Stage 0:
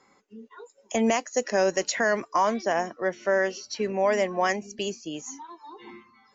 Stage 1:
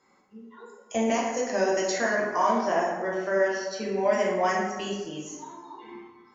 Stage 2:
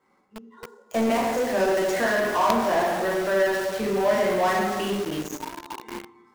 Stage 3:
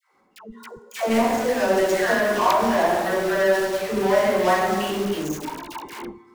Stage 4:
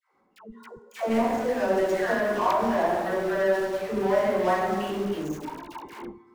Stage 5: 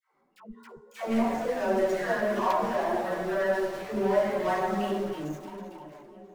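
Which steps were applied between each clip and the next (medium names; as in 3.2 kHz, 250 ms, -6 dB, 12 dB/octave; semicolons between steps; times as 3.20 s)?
plate-style reverb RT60 1.3 s, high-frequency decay 0.5×, DRR -4.5 dB; trim -6.5 dB
median filter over 9 samples; in parallel at -3.5 dB: companded quantiser 2-bit; on the sum: trim -1 dB
phase dispersion lows, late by 138 ms, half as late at 680 Hz; trim +2.5 dB
treble shelf 2.4 kHz -9 dB; trim -3.5 dB
fade out at the end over 1.49 s; two-band feedback delay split 720 Hz, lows 558 ms, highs 328 ms, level -15 dB; chorus voices 6, 0.35 Hz, delay 10 ms, depth 4.9 ms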